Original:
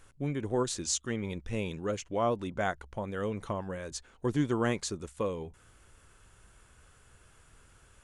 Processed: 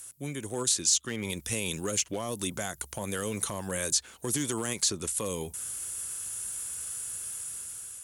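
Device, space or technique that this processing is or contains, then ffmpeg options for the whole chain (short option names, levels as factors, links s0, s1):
FM broadcast chain: -filter_complex "[0:a]highpass=76,dynaudnorm=f=440:g=5:m=2.51,acrossover=split=290|4500[s0][s1][s2];[s0]acompressor=threshold=0.0355:ratio=4[s3];[s1]acompressor=threshold=0.0447:ratio=4[s4];[s2]acompressor=threshold=0.00316:ratio=4[s5];[s3][s4][s5]amix=inputs=3:normalize=0,aemphasis=mode=production:type=75fm,alimiter=limit=0.0944:level=0:latency=1:release=61,asoftclip=type=hard:threshold=0.0794,lowpass=f=15000:w=0.5412,lowpass=f=15000:w=1.3066,aemphasis=mode=production:type=75fm,volume=0.794"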